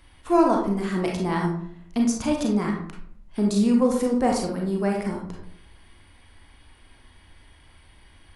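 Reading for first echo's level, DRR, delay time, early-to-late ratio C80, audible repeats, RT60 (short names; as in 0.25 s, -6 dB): none, -0.5 dB, none, 8.0 dB, none, 0.65 s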